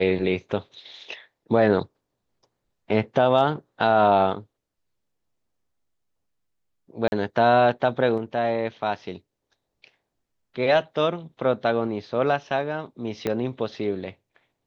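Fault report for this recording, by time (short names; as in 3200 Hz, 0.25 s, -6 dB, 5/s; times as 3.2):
7.08–7.12 gap 41 ms
13.27 pop -12 dBFS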